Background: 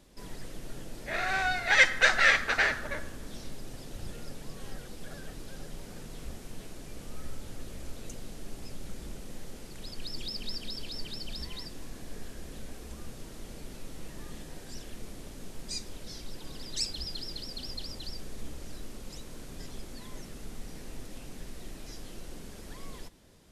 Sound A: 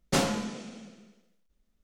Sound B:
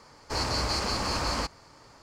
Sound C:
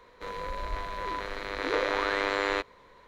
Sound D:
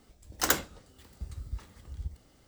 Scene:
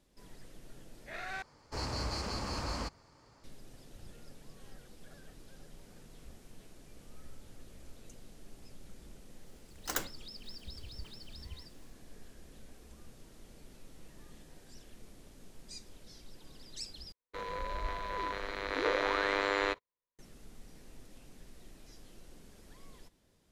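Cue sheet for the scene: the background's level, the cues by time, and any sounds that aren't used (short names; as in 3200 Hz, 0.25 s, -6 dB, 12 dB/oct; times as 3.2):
background -11 dB
1.42 replace with B -10.5 dB + low shelf 440 Hz +5.5 dB
9.46 add D -9.5 dB
17.12 replace with C -3 dB + gate -46 dBFS, range -42 dB
not used: A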